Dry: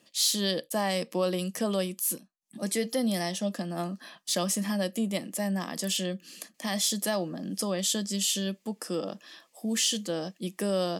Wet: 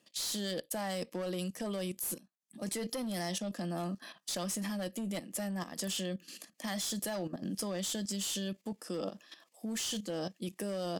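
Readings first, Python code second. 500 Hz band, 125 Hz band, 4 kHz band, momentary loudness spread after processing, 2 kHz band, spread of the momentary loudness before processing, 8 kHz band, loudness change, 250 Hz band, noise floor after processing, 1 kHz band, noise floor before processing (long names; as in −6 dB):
−7.5 dB, −5.5 dB, −8.5 dB, 7 LU, −7.0 dB, 10 LU, −8.0 dB, −7.5 dB, −6.5 dB, −73 dBFS, −7.0 dB, −69 dBFS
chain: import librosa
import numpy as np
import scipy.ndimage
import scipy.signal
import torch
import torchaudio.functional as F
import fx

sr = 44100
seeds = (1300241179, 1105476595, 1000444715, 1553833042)

y = fx.clip_asym(x, sr, top_db=-27.0, bottom_db=-20.5)
y = fx.level_steps(y, sr, step_db=12)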